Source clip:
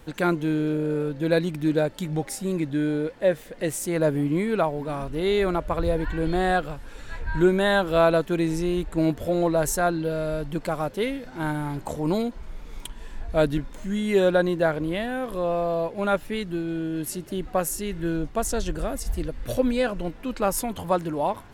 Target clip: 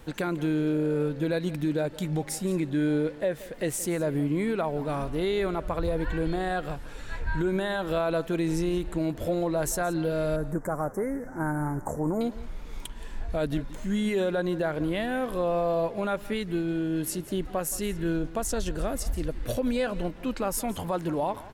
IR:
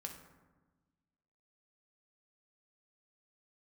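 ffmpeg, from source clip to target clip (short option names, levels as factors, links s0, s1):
-filter_complex "[0:a]alimiter=limit=0.112:level=0:latency=1:release=116,asettb=1/sr,asplit=3[s0][s1][s2];[s0]atrim=end=10.364[s3];[s1]atrim=start=10.36:end=12.21,asetpts=PTS-STARTPTS,afade=t=in:d=0.004:c=qsin,afade=t=out:st=1.846:d=0.004:c=qsin,asuperstop=centerf=3400:order=8:qfactor=0.79[s4];[s2]atrim=start=12.206[s5];[s3][s4]acrossfade=d=0.004:c1=hsin:c2=qsin[s6];[s6][s5]acrossfade=d=0.004:c1=qsin:c2=hsin,aecho=1:1:173:0.126"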